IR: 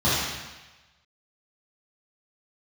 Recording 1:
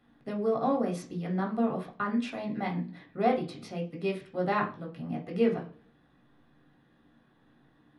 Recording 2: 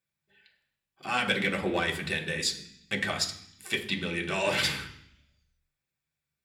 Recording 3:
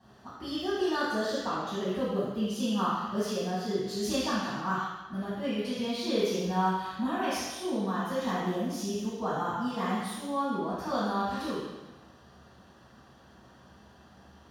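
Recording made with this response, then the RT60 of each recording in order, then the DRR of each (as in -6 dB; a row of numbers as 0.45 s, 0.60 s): 3; no single decay rate, 0.65 s, 1.1 s; -1.5 dB, 0.5 dB, -11.0 dB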